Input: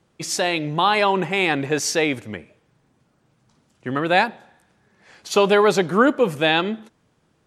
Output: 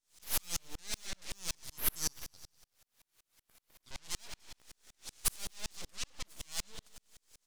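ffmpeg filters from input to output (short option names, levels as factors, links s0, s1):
-filter_complex "[0:a]asettb=1/sr,asplit=3[s0][s1][s2];[s0]atrim=end=1.554[s3];[s1]atrim=start=1.55:end=3.91,asetpts=PTS-STARTPTS,afade=t=in:d=0.004:c=qsin,afade=t=out:st=2.356:d=0.004:c=qsin,bandpass=f=6200:t=q:w=1.7:csg=0[s4];[s2]atrim=start=3.906[s5];[s3][s4]acrossfade=d=0.004:c1=hsin:c2=qsin[s6];[s6][s5]acrossfade=d=0.004:c1=qsin:c2=hsin,deesser=0.75,asplit=3[s7][s8][s9];[s7]afade=t=out:st=5.89:d=0.02[s10];[s8]agate=range=0.282:threshold=0.0794:ratio=16:detection=peak,afade=t=in:st=5.89:d=0.02,afade=t=out:st=6.4:d=0.02[s11];[s9]afade=t=in:st=6.4:d=0.02[s12];[s10][s11][s12]amix=inputs=3:normalize=0,acompressor=threshold=0.0355:ratio=6,asoftclip=type=tanh:threshold=0.0178,crystalizer=i=5.5:c=0,aeval=exprs='abs(val(0))':c=same,acrusher=bits=10:mix=0:aa=0.000001,equalizer=f=6300:w=0.54:g=10,aecho=1:1:97|194|291|388|485|582:0.2|0.114|0.0648|0.037|0.0211|0.012,aeval=exprs='val(0)*pow(10,-37*if(lt(mod(-5.3*n/s,1),2*abs(-5.3)/1000),1-mod(-5.3*n/s,1)/(2*abs(-5.3)/1000),(mod(-5.3*n/s,1)-2*abs(-5.3)/1000)/(1-2*abs(-5.3)/1000))/20)':c=same"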